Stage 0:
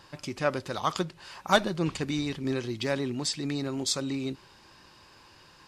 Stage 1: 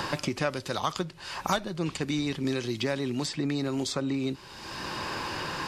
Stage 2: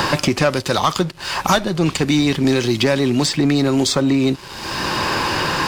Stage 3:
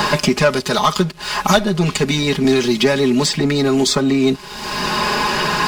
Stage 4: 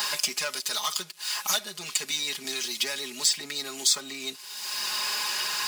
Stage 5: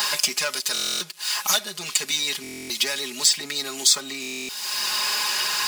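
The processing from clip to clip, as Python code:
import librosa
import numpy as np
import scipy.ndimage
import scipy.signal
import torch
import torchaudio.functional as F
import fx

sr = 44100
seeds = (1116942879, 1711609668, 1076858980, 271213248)

y1 = fx.band_squash(x, sr, depth_pct=100)
y2 = fx.leveller(y1, sr, passes=2)
y2 = F.gain(torch.from_numpy(y2), 6.5).numpy()
y3 = y2 + 0.96 * np.pad(y2, (int(4.8 * sr / 1000.0), 0))[:len(y2)]
y3 = F.gain(torch.from_numpy(y3), -1.0).numpy()
y4 = np.diff(y3, prepend=0.0)
y4 = F.gain(torch.from_numpy(y4), -1.0).numpy()
y5 = fx.buffer_glitch(y4, sr, at_s=(0.73, 2.42, 4.21), block=1024, repeats=11)
y5 = F.gain(torch.from_numpy(y5), 5.0).numpy()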